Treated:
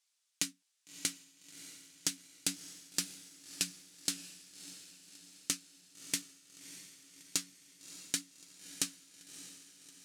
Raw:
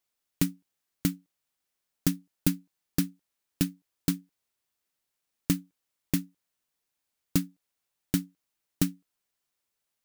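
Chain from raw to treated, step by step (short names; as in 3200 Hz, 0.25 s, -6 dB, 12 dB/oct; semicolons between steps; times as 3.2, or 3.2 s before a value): weighting filter ITU-R 468; compressor, threshold -24 dBFS, peak gain reduction 5.5 dB; flange 0.6 Hz, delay 2.2 ms, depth 8.7 ms, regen +66%; on a send: diffused feedback echo 0.616 s, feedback 55%, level -12.5 dB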